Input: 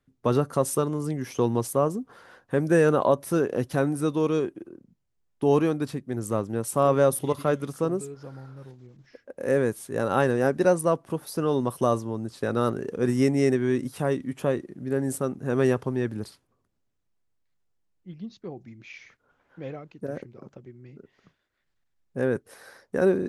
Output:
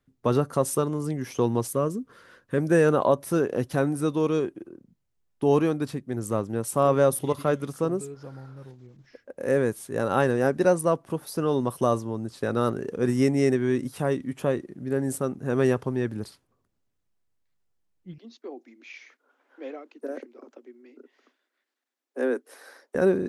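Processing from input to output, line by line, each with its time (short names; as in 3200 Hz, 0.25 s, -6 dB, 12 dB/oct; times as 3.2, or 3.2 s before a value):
1.68–2.58 bell 790 Hz -15 dB 0.44 oct
18.18–22.95 steep high-pass 240 Hz 96 dB/oct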